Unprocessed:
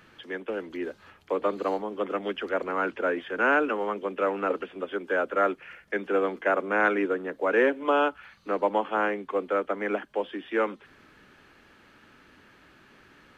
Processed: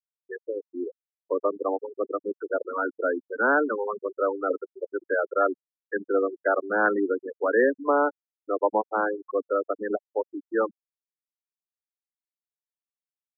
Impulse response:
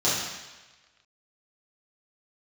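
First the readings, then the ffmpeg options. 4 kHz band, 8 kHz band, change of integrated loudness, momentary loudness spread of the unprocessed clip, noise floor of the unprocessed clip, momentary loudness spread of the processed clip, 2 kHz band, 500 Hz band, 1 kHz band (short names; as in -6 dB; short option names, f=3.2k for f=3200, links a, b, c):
under -40 dB, n/a, +0.5 dB, 10 LU, -57 dBFS, 12 LU, -0.5 dB, +1.5 dB, 0.0 dB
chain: -af "aemphasis=mode=reproduction:type=cd,afftfilt=real='re*gte(hypot(re,im),0.126)':imag='im*gte(hypot(re,im),0.126)':win_size=1024:overlap=0.75,volume=1.5dB"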